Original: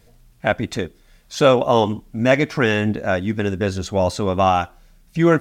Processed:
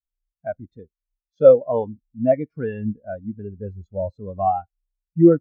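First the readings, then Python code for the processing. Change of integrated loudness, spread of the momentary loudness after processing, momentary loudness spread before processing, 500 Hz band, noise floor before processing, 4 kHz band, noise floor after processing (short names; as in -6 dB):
-1.0 dB, 20 LU, 11 LU, 0.0 dB, -53 dBFS, under -30 dB, under -85 dBFS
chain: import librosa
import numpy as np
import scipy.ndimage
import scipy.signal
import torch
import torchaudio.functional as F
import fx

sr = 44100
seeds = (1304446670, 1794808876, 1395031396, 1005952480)

y = fx.low_shelf(x, sr, hz=64.0, db=8.5)
y = fx.spectral_expand(y, sr, expansion=2.5)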